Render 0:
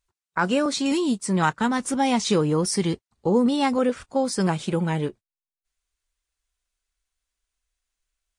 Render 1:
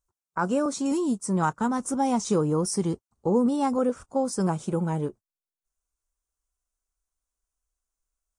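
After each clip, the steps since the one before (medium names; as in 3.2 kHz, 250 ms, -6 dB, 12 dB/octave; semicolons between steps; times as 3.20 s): high-order bell 2.8 kHz -12.5 dB; trim -2.5 dB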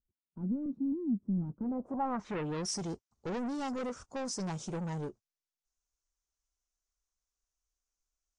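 saturation -28.5 dBFS, distortion -8 dB; low-pass sweep 240 Hz -> 5.9 kHz, 1.49–2.70 s; trim -5 dB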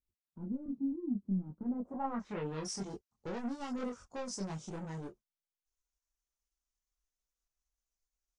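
chorus voices 4, 0.49 Hz, delay 23 ms, depth 3 ms; transient shaper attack +2 dB, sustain -3 dB; trim -1 dB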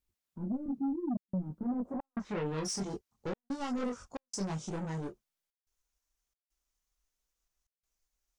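trance gate "xxxxxxx.xxxx." 90 bpm -60 dB; in parallel at -9 dB: sine folder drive 8 dB, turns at -25.5 dBFS; on the sum: trim -2 dB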